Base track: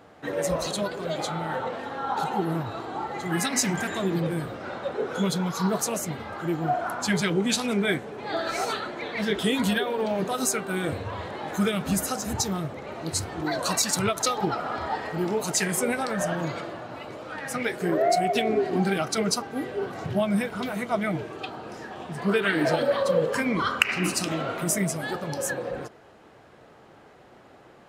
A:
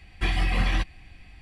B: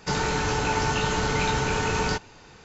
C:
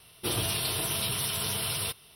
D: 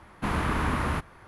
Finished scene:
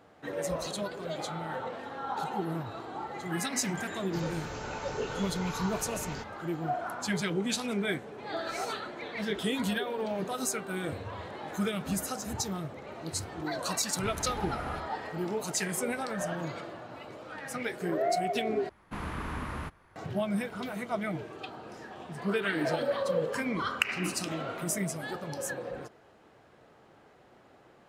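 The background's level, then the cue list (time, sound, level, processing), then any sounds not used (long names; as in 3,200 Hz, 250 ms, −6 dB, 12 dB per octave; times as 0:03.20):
base track −6.5 dB
0:04.06: mix in B −15.5 dB
0:13.80: mix in D −11.5 dB + parametric band 1,100 Hz −13 dB 0.38 octaves
0:18.69: overwrite with D −9.5 dB
not used: A, C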